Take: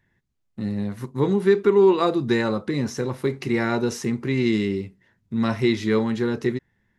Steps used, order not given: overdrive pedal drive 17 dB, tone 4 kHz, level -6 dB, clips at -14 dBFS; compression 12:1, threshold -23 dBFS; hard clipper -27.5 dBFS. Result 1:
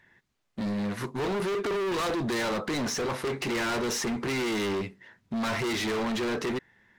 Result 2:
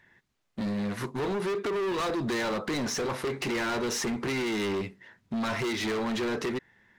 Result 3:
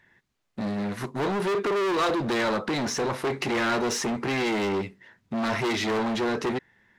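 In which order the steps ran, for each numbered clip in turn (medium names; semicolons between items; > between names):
overdrive pedal > hard clipper > compression; compression > overdrive pedal > hard clipper; hard clipper > compression > overdrive pedal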